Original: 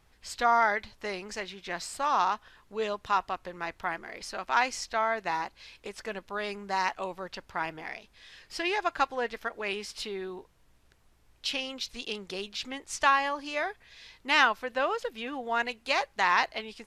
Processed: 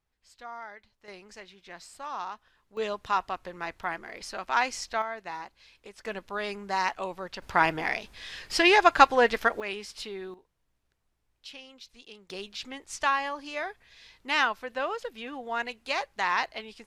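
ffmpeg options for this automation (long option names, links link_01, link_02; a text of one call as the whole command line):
ffmpeg -i in.wav -af "asetnsamples=nb_out_samples=441:pad=0,asendcmd='1.08 volume volume -10dB;2.77 volume volume 0dB;5.02 volume volume -7dB;6.05 volume volume 1dB;7.42 volume volume 10dB;9.6 volume volume -2dB;10.34 volume volume -13dB;12.3 volume volume -2.5dB',volume=-18dB" out.wav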